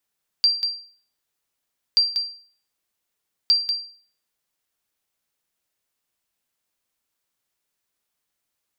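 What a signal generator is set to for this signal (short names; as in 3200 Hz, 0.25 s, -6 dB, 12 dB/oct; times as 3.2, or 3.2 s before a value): sonar ping 4720 Hz, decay 0.46 s, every 1.53 s, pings 3, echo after 0.19 s, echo -7 dB -10 dBFS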